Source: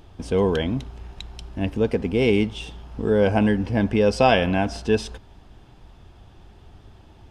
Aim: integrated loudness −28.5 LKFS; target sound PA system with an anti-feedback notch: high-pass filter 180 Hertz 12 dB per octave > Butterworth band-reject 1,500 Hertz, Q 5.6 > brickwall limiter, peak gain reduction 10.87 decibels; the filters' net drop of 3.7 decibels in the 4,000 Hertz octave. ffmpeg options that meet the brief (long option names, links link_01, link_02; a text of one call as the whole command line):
ffmpeg -i in.wav -af "highpass=180,asuperstop=centerf=1500:order=8:qfactor=5.6,equalizer=frequency=4000:width_type=o:gain=-5.5,volume=-2dB,alimiter=limit=-16.5dB:level=0:latency=1" out.wav